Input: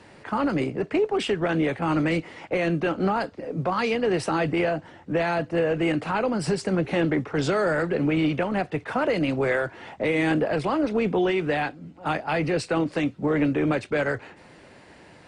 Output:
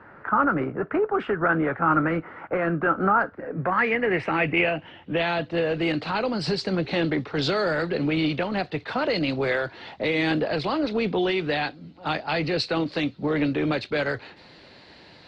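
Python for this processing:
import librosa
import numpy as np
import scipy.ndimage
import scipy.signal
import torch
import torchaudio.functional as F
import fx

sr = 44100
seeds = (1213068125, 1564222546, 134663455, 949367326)

y = fx.filter_sweep_lowpass(x, sr, from_hz=1400.0, to_hz=4200.0, start_s=3.19, end_s=5.77, q=4.9)
y = y * librosa.db_to_amplitude(-1.5)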